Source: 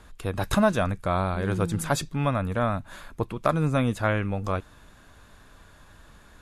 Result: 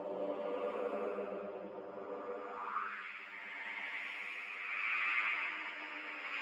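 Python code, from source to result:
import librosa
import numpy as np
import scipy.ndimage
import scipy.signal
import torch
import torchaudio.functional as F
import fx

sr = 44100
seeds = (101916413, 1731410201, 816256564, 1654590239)

y = fx.pitch_heads(x, sr, semitones=12.0)
y = fx.echo_alternate(y, sr, ms=332, hz=2300.0, feedback_pct=73, wet_db=-3.5)
y = fx.paulstretch(y, sr, seeds[0], factor=5.1, window_s=0.25, from_s=2.48)
y = fx.hpss(y, sr, part='harmonic', gain_db=-10)
y = fx.filter_sweep_bandpass(y, sr, from_hz=570.0, to_hz=2100.0, start_s=2.38, end_s=3.07, q=4.0)
y = F.gain(torch.from_numpy(y), 2.0).numpy()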